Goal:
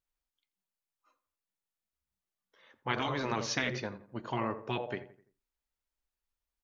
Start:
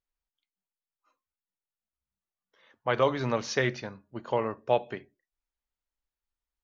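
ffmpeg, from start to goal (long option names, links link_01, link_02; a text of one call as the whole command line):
ffmpeg -i in.wav -filter_complex "[0:a]asplit=2[link_01][link_02];[link_02]adelay=85,lowpass=frequency=1900:poles=1,volume=-14dB,asplit=2[link_03][link_04];[link_04]adelay=85,lowpass=frequency=1900:poles=1,volume=0.42,asplit=2[link_05][link_06];[link_06]adelay=85,lowpass=frequency=1900:poles=1,volume=0.42,asplit=2[link_07][link_08];[link_08]adelay=85,lowpass=frequency=1900:poles=1,volume=0.42[link_09];[link_01][link_03][link_05][link_07][link_09]amix=inputs=5:normalize=0,afftfilt=real='re*lt(hypot(re,im),0.2)':imag='im*lt(hypot(re,im),0.2)':win_size=1024:overlap=0.75" out.wav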